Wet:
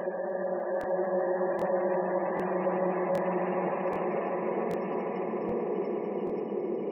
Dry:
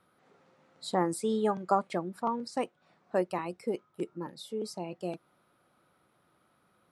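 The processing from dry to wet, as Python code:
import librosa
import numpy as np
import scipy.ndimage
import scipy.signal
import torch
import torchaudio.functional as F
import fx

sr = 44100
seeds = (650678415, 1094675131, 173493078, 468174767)

y = fx.spec_trails(x, sr, decay_s=0.68)
y = fx.paulstretch(y, sr, seeds[0], factor=7.8, window_s=1.0, from_s=3.0)
y = fx.highpass(y, sr, hz=160.0, slope=6)
y = fx.spec_gate(y, sr, threshold_db=-25, keep='strong')
y = fx.echo_swell(y, sr, ms=150, loudest=5, wet_db=-13.5)
y = fx.buffer_crackle(y, sr, first_s=0.79, period_s=0.78, block=1024, kind='repeat')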